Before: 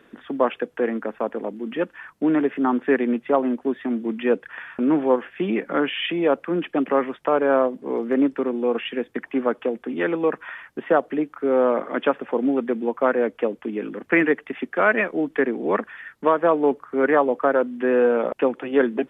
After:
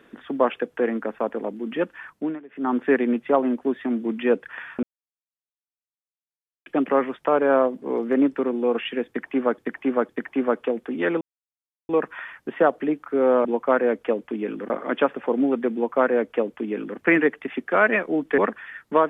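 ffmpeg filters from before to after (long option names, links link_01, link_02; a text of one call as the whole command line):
ffmpeg -i in.wav -filter_complex "[0:a]asplit=11[link_01][link_02][link_03][link_04][link_05][link_06][link_07][link_08][link_09][link_10][link_11];[link_01]atrim=end=2.4,asetpts=PTS-STARTPTS,afade=type=out:start_time=2.1:duration=0.3:silence=0.0707946[link_12];[link_02]atrim=start=2.4:end=2.48,asetpts=PTS-STARTPTS,volume=-23dB[link_13];[link_03]atrim=start=2.48:end=4.83,asetpts=PTS-STARTPTS,afade=type=in:duration=0.3:silence=0.0707946,afade=type=out:start_time=2.346:duration=0.004:curve=hsin[link_14];[link_04]atrim=start=4.83:end=6.66,asetpts=PTS-STARTPTS,volume=0[link_15];[link_05]atrim=start=6.66:end=9.582,asetpts=PTS-STARTPTS,afade=type=in:duration=0.004:curve=hsin[link_16];[link_06]atrim=start=9.068:end=9.582[link_17];[link_07]atrim=start=9.068:end=10.19,asetpts=PTS-STARTPTS,afade=type=out:start_time=1.118:duration=0.004:curve=hsin,apad=pad_dur=0.68[link_18];[link_08]atrim=start=10.19:end=11.752,asetpts=PTS-STARTPTS,afade=type=in:duration=0.004:curve=hsin[link_19];[link_09]atrim=start=12.788:end=14.042[link_20];[link_10]atrim=start=11.748:end=15.432[link_21];[link_11]atrim=start=15.688[link_22];[link_12][link_13][link_14][link_15][link_16]concat=n=5:v=0:a=1[link_23];[link_23][link_17]acrossfade=duration=0.004:curve1=hsin:curve2=hsin[link_24];[link_18][link_19]concat=n=2:v=0:a=1[link_25];[link_24][link_25]acrossfade=duration=0.004:curve1=hsin:curve2=hsin[link_26];[link_26][link_20]acrossfade=duration=0.004:curve1=hsin:curve2=hsin[link_27];[link_27][link_21]acrossfade=duration=0.004:curve1=hsin:curve2=hsin[link_28];[link_28][link_22]acrossfade=duration=0.004:curve1=hsin:curve2=hsin" out.wav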